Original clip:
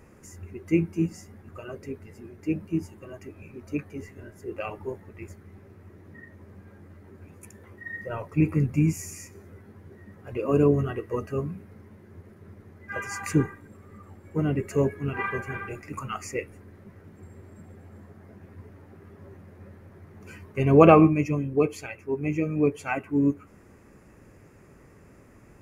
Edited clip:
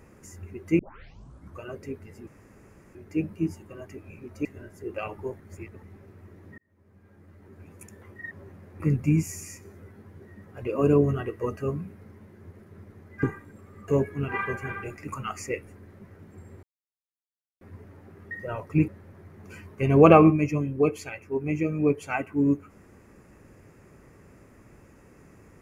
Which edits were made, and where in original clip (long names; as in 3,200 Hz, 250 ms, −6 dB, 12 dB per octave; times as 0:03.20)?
0:00.79: tape start 0.82 s
0:02.27: splice in room tone 0.68 s
0:03.77–0:04.07: remove
0:05.02–0:05.45: reverse
0:06.20–0:07.34: fade in
0:07.93–0:08.50: swap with 0:19.16–0:19.65
0:12.93–0:13.39: remove
0:14.04–0:14.73: remove
0:17.48–0:18.46: silence